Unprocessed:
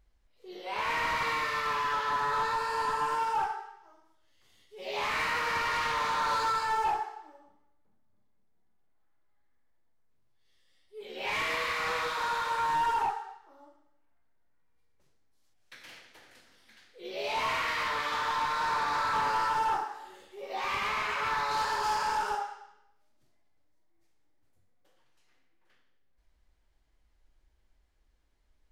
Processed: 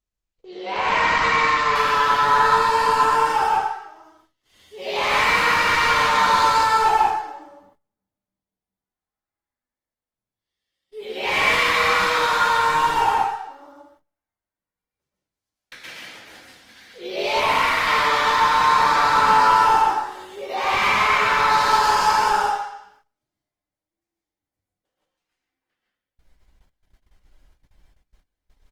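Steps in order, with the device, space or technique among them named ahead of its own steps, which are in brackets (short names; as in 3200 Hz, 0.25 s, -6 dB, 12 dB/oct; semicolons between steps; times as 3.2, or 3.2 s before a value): speakerphone in a meeting room (reverb RT60 0.45 s, pre-delay 0.118 s, DRR -1.5 dB; speakerphone echo 0.11 s, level -26 dB; AGC gain up to 9 dB; gate -54 dBFS, range -21 dB; Opus 24 kbps 48000 Hz)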